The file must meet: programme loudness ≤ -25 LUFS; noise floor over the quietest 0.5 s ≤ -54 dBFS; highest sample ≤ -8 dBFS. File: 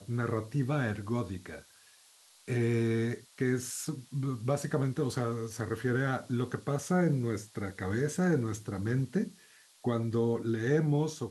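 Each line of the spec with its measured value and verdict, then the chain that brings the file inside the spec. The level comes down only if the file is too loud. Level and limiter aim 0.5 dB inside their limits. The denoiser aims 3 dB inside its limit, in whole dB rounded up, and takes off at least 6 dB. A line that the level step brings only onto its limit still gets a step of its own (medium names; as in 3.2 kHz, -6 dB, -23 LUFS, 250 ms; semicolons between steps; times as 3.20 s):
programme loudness -32.0 LUFS: pass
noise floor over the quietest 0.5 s -61 dBFS: pass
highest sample -16.5 dBFS: pass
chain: none needed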